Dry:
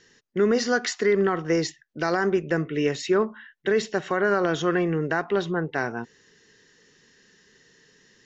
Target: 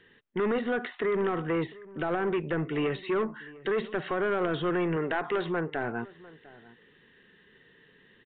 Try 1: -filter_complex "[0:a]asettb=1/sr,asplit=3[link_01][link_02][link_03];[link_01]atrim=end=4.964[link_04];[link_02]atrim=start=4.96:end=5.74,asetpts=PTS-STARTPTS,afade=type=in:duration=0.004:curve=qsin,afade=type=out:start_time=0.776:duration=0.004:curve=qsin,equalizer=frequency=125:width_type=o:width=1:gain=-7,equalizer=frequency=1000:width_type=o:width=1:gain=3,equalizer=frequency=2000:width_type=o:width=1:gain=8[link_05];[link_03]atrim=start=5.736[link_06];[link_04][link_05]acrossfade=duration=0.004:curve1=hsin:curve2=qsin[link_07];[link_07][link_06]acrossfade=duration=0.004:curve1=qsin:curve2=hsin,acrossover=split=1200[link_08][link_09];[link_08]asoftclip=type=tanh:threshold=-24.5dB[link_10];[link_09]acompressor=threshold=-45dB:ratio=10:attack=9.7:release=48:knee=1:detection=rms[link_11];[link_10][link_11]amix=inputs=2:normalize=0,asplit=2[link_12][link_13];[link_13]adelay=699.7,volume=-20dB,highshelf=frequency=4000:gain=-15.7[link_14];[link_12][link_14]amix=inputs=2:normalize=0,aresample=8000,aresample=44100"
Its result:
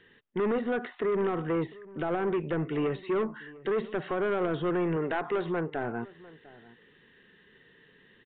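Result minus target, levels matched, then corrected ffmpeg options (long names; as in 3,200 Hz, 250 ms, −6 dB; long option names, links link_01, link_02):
downward compressor: peak gain reduction +7 dB
-filter_complex "[0:a]asettb=1/sr,asplit=3[link_01][link_02][link_03];[link_01]atrim=end=4.964[link_04];[link_02]atrim=start=4.96:end=5.74,asetpts=PTS-STARTPTS,afade=type=in:duration=0.004:curve=qsin,afade=type=out:start_time=0.776:duration=0.004:curve=qsin,equalizer=frequency=125:width_type=o:width=1:gain=-7,equalizer=frequency=1000:width_type=o:width=1:gain=3,equalizer=frequency=2000:width_type=o:width=1:gain=8[link_05];[link_03]atrim=start=5.736[link_06];[link_04][link_05]acrossfade=duration=0.004:curve1=hsin:curve2=qsin[link_07];[link_07][link_06]acrossfade=duration=0.004:curve1=qsin:curve2=hsin,acrossover=split=1200[link_08][link_09];[link_08]asoftclip=type=tanh:threshold=-24.5dB[link_10];[link_09]acompressor=threshold=-37dB:ratio=10:attack=9.7:release=48:knee=1:detection=rms[link_11];[link_10][link_11]amix=inputs=2:normalize=0,asplit=2[link_12][link_13];[link_13]adelay=699.7,volume=-20dB,highshelf=frequency=4000:gain=-15.7[link_14];[link_12][link_14]amix=inputs=2:normalize=0,aresample=8000,aresample=44100"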